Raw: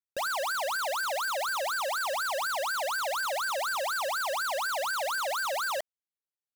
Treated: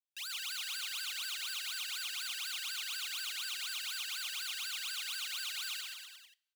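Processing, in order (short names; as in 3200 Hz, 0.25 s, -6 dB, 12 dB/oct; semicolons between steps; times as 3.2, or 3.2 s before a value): ladder high-pass 2300 Hz, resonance 45%; bouncing-ball echo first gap 0.13 s, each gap 0.9×, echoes 5; two-slope reverb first 0.32 s, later 1.8 s, from -26 dB, DRR 16.5 dB; gain +2 dB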